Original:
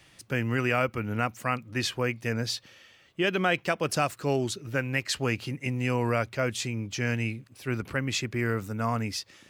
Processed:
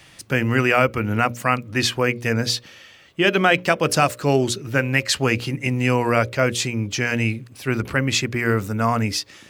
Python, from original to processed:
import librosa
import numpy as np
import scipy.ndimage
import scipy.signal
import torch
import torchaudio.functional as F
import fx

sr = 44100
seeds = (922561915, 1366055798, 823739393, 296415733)

y = fx.hum_notches(x, sr, base_hz=60, count=10)
y = F.gain(torch.from_numpy(y), 9.0).numpy()